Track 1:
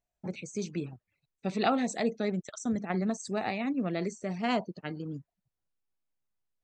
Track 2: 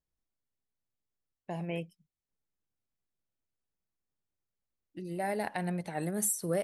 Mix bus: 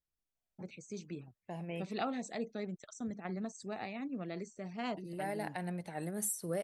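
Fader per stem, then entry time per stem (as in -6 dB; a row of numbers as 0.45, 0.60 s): -9.5, -5.5 dB; 0.35, 0.00 s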